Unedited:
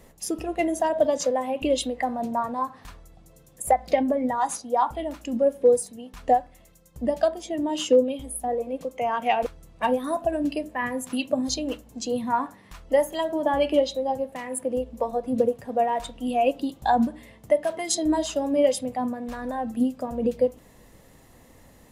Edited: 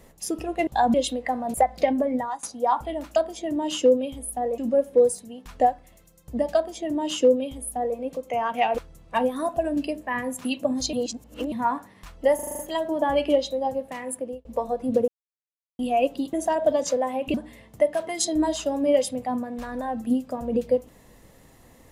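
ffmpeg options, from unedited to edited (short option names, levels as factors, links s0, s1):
-filter_complex "[0:a]asplit=20[s0][s1][s2][s3][s4][s5][s6][s7][s8][s9][s10][s11][s12][s13][s14][s15][s16][s17][s18][s19];[s0]atrim=end=0.672[s20];[s1]atrim=start=16.768:end=17.042[s21];[s2]atrim=start=1.678:end=2.282[s22];[s3]atrim=start=3.638:end=4.53,asetpts=PTS-STARTPTS,afade=t=out:st=0.622:d=0.27:silence=0.0841395[s23];[s4]atrim=start=4.53:end=5.262,asetpts=PTS-STARTPTS,afade=t=in:d=0.004:c=hsin:silence=0.0841395[s24];[s5]atrim=start=7.228:end=8.652[s25];[s6]atrim=start=5.258:end=11.612[s26];[s7]atrim=start=11.608:end=12.202,asetpts=PTS-STARTPTS,areverse[s27];[s8]atrim=start=12.198:end=13.072[s28];[s9]atrim=start=13.028:end=13.072[s29];[s10]atrim=start=13.028:end=13.072[s30];[s11]atrim=start=13.028:end=13.072[s31];[s12]atrim=start=13.028:end=13.072[s32];[s13]atrim=start=13.028:end=13.072[s33];[s14]atrim=start=13.028:end=14.89,asetpts=PTS-STARTPTS,afade=t=out:st=1.362:d=0.5:c=qsin[s34];[s15]atrim=start=14.89:end=15.52,asetpts=PTS-STARTPTS,afade=t=in:d=0.004:c=hsin,afade=t=out:st=0.626:d=0.004:c=hsin[s35];[s16]atrim=start=15.52:end=16.23,asetpts=PTS-STARTPTS,volume=0[s36];[s17]atrim=start=16.23:end=16.772,asetpts=PTS-STARTPTS,afade=t=in:d=0.004:c=hsin[s37];[s18]atrim=start=0.668:end=1.682[s38];[s19]atrim=start=17.038[s39];[s20][s21]acrossfade=d=0.004:c1=hsin:c2=hsin[s40];[s40][s22]acrossfade=d=0.004:c1=hsin:c2=hsin[s41];[s23][s24]concat=n=2:v=0:a=1[s42];[s41][s42]acrossfade=d=0.004:c1=hsin:c2=hsin[s43];[s43][s25]acrossfade=d=0.004:c1=hsin:c2=hsin[s44];[s44][s26]acrossfade=d=0.004:c1=hsin:c2=hsin[s45];[s45][s27]acrossfade=d=0.004:c1=hsin:c2=hsin[s46];[s46][s28]acrossfade=d=0.004:c1=hsin:c2=hsin[s47];[s47][s29]acrossfade=d=0.004:c1=hsin:c2=hsin[s48];[s48][s30]acrossfade=d=0.004:c1=hsin:c2=hsin[s49];[s49][s31]acrossfade=d=0.004:c1=hsin:c2=hsin[s50];[s50][s32]acrossfade=d=0.004:c1=hsin:c2=hsin[s51];[s51][s33]acrossfade=d=0.004:c1=hsin:c2=hsin[s52];[s34][s35][s36][s37]concat=n=4:v=0:a=1[s53];[s52][s53]acrossfade=d=0.004:c1=hsin:c2=hsin[s54];[s54][s38]acrossfade=d=0.004:c1=hsin:c2=hsin[s55];[s55][s39]acrossfade=d=0.004:c1=hsin:c2=hsin"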